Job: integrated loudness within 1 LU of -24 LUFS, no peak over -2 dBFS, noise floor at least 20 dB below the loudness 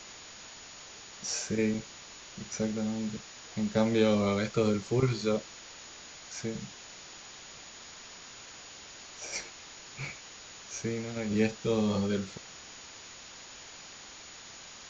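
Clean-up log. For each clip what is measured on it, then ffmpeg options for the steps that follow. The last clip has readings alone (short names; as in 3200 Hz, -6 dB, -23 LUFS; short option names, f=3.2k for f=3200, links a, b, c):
steady tone 6800 Hz; tone level -53 dBFS; noise floor -49 dBFS; noise floor target -52 dBFS; loudness -31.5 LUFS; peak -12.0 dBFS; loudness target -24.0 LUFS
-> -af "bandreject=f=6.8k:w=30"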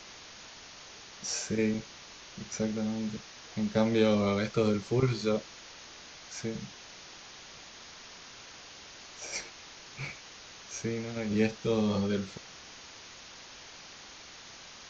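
steady tone none; noise floor -50 dBFS; noise floor target -52 dBFS
-> -af "afftdn=nr=6:nf=-50"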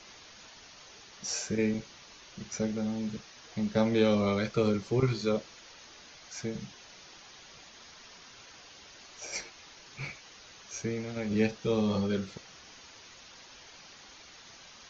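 noise floor -53 dBFS; loudness -31.5 LUFS; peak -12.0 dBFS; loudness target -24.0 LUFS
-> -af "volume=7.5dB"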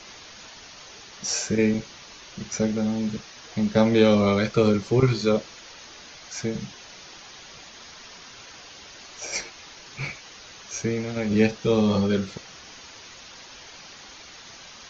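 loudness -24.0 LUFS; peak -4.5 dBFS; noise floor -45 dBFS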